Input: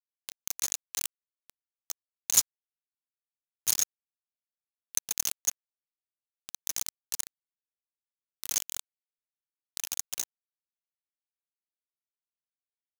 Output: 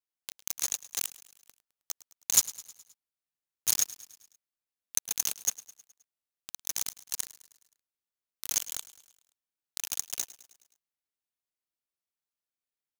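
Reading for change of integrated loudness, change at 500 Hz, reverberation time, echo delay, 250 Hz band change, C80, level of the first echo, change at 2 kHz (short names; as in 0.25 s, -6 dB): 0.0 dB, 0.0 dB, none, 0.105 s, 0.0 dB, none, -18.5 dB, 0.0 dB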